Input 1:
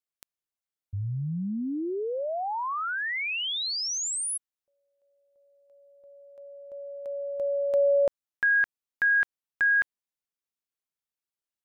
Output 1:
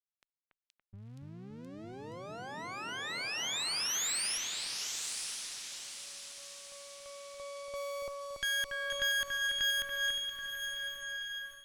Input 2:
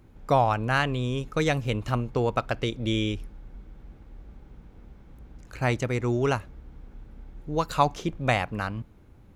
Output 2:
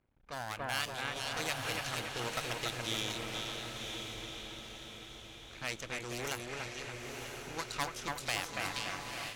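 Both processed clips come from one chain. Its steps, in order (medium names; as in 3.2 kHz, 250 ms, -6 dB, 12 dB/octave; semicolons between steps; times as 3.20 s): half-wave rectifier; on a send: two-band feedback delay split 2.6 kHz, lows 284 ms, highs 473 ms, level -3.5 dB; on the sum: level-controlled noise filter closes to 2 kHz, open at -20.5 dBFS; pre-emphasis filter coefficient 0.9; in parallel at -1 dB: compression, threshold -55 dBFS; on the sum: echo that smears into a reverb 987 ms, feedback 45%, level -4.5 dB; level rider gain up to 8.5 dB; one-sided clip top -18.5 dBFS; Chebyshev shaper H 6 -31 dB, 7 -33 dB, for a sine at -12 dBFS; trim -3.5 dB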